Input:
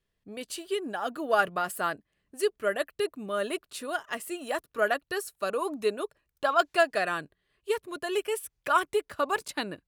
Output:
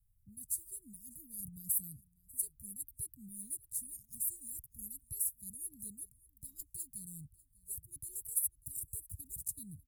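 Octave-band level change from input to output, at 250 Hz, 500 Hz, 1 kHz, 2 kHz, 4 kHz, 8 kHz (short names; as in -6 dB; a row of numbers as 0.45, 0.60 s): -17.0 dB, under -40 dB, under -40 dB, under -40 dB, under -30 dB, +5.5 dB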